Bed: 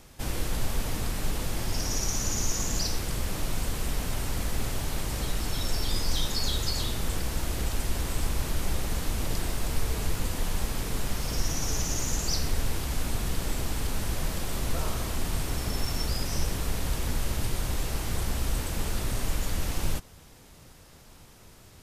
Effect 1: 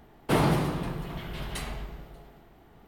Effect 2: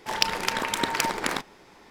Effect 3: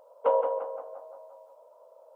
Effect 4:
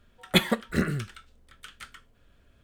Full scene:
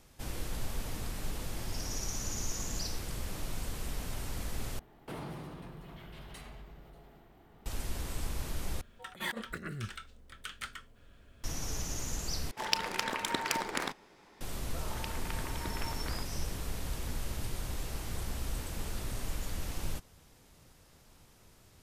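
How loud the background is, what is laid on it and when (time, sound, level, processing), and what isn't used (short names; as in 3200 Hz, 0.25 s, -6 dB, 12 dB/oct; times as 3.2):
bed -8 dB
4.79 replace with 1 -4 dB + compressor 2:1, threshold -47 dBFS
8.81 replace with 4 -5 dB + negative-ratio compressor -36 dBFS
12.51 replace with 2 -7 dB
14.82 add 2 -15.5 dB + LPF 2700 Hz
not used: 3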